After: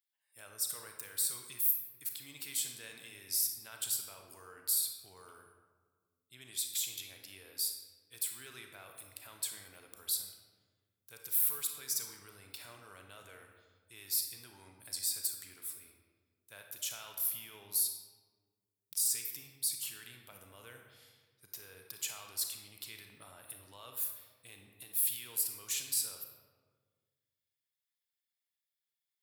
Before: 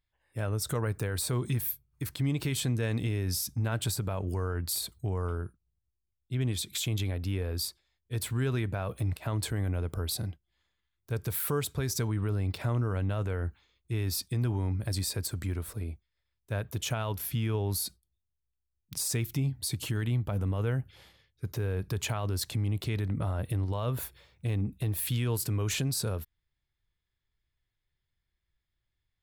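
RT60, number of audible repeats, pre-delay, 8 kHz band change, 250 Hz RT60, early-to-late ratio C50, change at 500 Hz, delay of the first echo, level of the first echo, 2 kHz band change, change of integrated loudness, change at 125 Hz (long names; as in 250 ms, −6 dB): 1.5 s, no echo audible, 29 ms, +2.0 dB, 1.9 s, 4.5 dB, −21.5 dB, no echo audible, no echo audible, −9.5 dB, −2.5 dB, −34.0 dB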